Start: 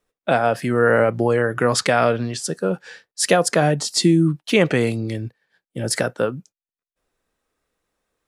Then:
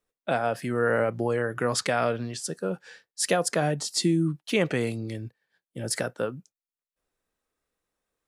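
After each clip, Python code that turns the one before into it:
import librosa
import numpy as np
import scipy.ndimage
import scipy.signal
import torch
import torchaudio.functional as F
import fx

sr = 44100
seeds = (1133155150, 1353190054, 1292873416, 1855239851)

y = fx.high_shelf(x, sr, hz=7600.0, db=4.0)
y = F.gain(torch.from_numpy(y), -8.0).numpy()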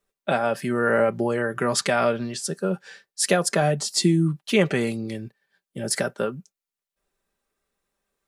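y = x + 0.49 * np.pad(x, (int(5.1 * sr / 1000.0), 0))[:len(x)]
y = F.gain(torch.from_numpy(y), 3.0).numpy()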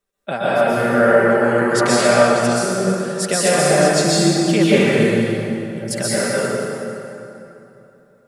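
y = fx.rev_plate(x, sr, seeds[0], rt60_s=3.1, hf_ratio=0.65, predelay_ms=110, drr_db=-9.5)
y = F.gain(torch.from_numpy(y), -2.0).numpy()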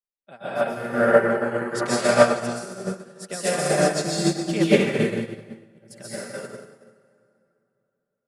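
y = fx.upward_expand(x, sr, threshold_db=-28.0, expansion=2.5)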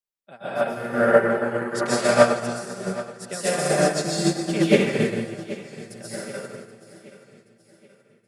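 y = fx.echo_feedback(x, sr, ms=777, feedback_pct=44, wet_db=-17)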